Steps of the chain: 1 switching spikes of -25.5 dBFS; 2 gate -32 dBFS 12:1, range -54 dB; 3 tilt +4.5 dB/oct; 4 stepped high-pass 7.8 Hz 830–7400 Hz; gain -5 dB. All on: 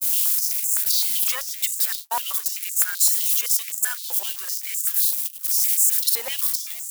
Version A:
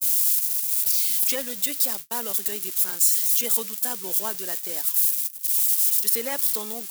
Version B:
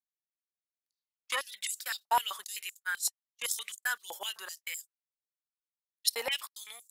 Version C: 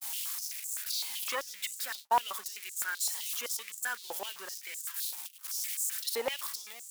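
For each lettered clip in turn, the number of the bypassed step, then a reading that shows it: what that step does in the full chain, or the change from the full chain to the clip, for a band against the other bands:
4, 500 Hz band +14.0 dB; 1, distortion -6 dB; 3, 8 kHz band -12.0 dB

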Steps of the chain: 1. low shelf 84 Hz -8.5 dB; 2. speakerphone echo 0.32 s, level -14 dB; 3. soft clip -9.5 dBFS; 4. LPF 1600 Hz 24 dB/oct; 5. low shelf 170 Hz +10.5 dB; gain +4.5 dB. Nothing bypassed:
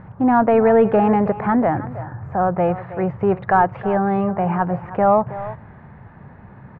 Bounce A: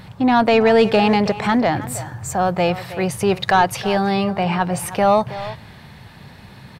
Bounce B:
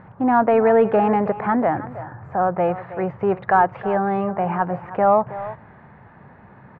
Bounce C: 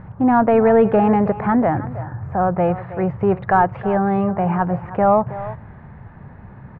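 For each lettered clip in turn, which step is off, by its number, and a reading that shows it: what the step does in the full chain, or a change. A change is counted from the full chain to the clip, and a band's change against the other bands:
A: 4, 2 kHz band +5.5 dB; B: 5, 125 Hz band -4.5 dB; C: 1, 125 Hz band +2.0 dB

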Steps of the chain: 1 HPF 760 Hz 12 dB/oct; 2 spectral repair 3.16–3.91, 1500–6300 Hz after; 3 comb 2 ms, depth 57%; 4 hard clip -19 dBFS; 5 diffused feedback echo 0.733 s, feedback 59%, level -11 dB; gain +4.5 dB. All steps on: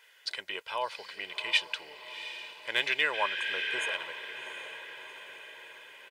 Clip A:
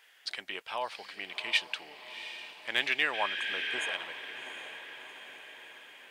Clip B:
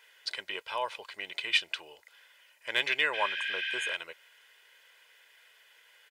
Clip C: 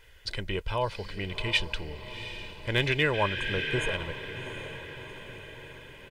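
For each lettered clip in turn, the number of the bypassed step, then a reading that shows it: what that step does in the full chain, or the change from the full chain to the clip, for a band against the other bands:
3, 250 Hz band +3.5 dB; 5, echo-to-direct -9.0 dB to none; 1, 250 Hz band +16.0 dB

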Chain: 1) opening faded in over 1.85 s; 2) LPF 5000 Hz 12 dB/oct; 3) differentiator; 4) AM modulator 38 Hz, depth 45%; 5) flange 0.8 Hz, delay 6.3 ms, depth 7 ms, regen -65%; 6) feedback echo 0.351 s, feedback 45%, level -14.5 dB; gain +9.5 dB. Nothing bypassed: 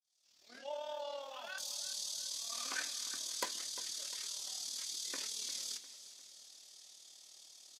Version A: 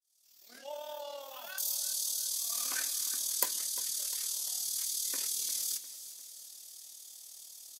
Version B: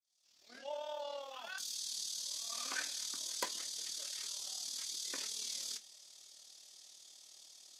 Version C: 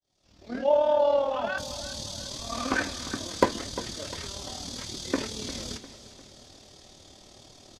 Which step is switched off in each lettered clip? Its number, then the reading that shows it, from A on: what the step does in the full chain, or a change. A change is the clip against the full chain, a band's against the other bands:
2, 8 kHz band +8.0 dB; 6, echo-to-direct -13.5 dB to none; 3, 8 kHz band -16.5 dB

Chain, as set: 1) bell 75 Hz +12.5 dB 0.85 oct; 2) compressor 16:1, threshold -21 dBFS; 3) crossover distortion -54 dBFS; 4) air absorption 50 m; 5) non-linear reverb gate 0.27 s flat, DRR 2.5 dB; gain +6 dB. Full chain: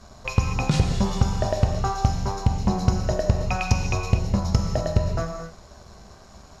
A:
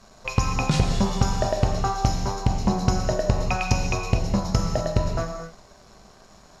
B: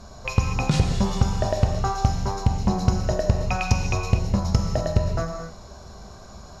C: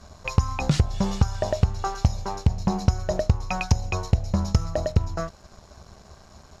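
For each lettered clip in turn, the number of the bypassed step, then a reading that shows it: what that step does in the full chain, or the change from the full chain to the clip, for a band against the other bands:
1, 125 Hz band -3.0 dB; 3, distortion -26 dB; 5, momentary loudness spread change -2 LU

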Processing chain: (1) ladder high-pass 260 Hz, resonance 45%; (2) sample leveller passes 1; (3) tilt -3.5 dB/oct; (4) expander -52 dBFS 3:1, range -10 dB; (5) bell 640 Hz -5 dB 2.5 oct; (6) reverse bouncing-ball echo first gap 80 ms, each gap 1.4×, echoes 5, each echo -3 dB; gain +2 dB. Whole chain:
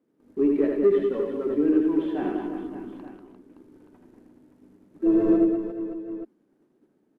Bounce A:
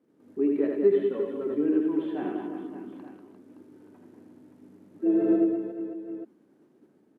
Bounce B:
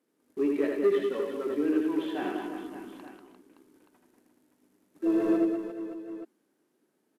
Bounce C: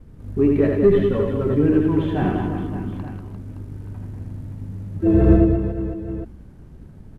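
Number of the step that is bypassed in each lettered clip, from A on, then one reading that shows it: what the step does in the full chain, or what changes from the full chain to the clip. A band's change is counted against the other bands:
2, loudness change -3.0 LU; 3, 2 kHz band +8.0 dB; 1, 125 Hz band +18.0 dB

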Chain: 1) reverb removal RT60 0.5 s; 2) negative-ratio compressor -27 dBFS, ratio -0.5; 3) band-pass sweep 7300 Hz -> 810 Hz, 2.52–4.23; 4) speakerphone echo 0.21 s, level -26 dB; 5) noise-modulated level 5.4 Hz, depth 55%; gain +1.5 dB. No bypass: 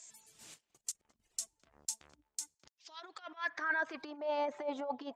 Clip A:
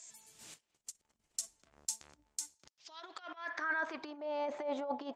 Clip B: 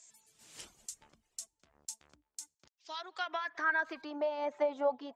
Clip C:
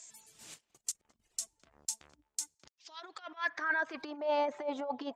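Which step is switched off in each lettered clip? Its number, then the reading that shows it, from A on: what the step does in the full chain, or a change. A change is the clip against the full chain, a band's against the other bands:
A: 1, crest factor change +1.5 dB; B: 2, crest factor change -2.5 dB; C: 5, momentary loudness spread change -2 LU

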